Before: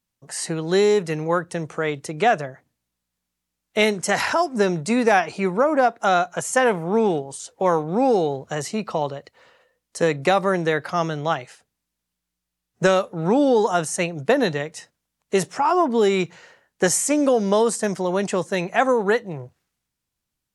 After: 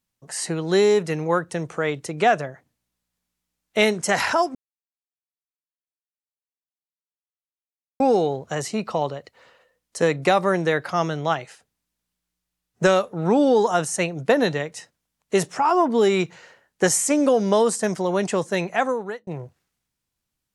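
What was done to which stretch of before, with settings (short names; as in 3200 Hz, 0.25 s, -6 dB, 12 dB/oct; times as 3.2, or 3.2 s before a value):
4.55–8 mute
18.62–19.27 fade out linear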